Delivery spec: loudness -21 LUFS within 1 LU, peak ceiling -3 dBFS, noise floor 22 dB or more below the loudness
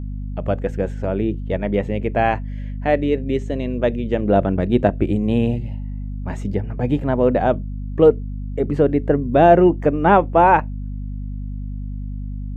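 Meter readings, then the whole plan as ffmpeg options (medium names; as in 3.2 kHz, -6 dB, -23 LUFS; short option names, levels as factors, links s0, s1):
hum 50 Hz; highest harmonic 250 Hz; hum level -25 dBFS; loudness -19.0 LUFS; peak level -1.5 dBFS; loudness target -21.0 LUFS
-> -af "bandreject=f=50:t=h:w=6,bandreject=f=100:t=h:w=6,bandreject=f=150:t=h:w=6,bandreject=f=200:t=h:w=6,bandreject=f=250:t=h:w=6"
-af "volume=0.794"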